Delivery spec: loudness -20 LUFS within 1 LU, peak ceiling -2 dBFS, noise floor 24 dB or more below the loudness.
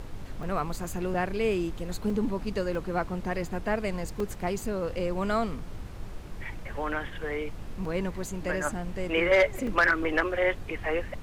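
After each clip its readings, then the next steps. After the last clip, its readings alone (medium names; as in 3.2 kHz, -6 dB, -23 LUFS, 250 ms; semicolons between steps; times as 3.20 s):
dropouts 7; longest dropout 2.7 ms; noise floor -40 dBFS; noise floor target -54 dBFS; loudness -29.5 LUFS; peak level -12.0 dBFS; loudness target -20.0 LUFS
-> interpolate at 0.43/1.14/2.10/2.75/4.20/7.85/9.67 s, 2.7 ms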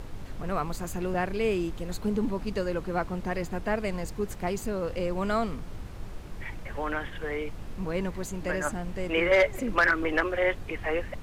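dropouts 0; noise floor -40 dBFS; noise floor target -54 dBFS
-> noise print and reduce 14 dB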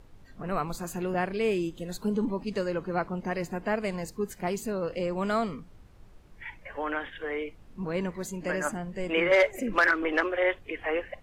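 noise floor -53 dBFS; noise floor target -54 dBFS
-> noise print and reduce 6 dB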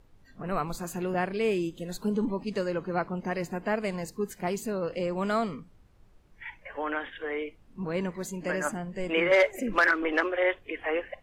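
noise floor -58 dBFS; loudness -29.5 LUFS; peak level -12.0 dBFS; loudness target -20.0 LUFS
-> trim +9.5 dB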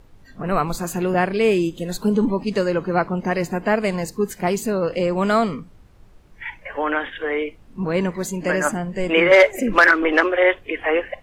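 loudness -20.0 LUFS; peak level -2.5 dBFS; noise floor -49 dBFS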